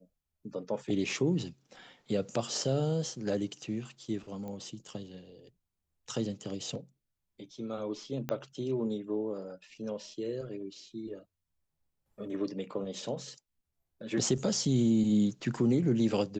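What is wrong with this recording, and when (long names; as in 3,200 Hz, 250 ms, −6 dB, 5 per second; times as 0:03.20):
0:04.48: click −30 dBFS
0:08.29: click −19 dBFS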